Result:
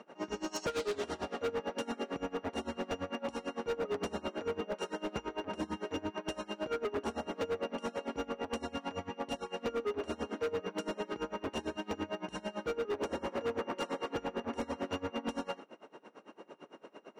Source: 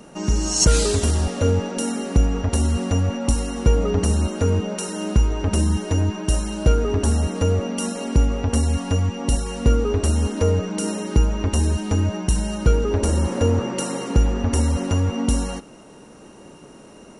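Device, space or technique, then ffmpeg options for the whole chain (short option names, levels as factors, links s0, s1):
helicopter radio: -af "highpass=380,lowpass=2700,aeval=exprs='val(0)*pow(10,-24*(0.5-0.5*cos(2*PI*8.9*n/s))/20)':c=same,asoftclip=type=hard:threshold=0.0316"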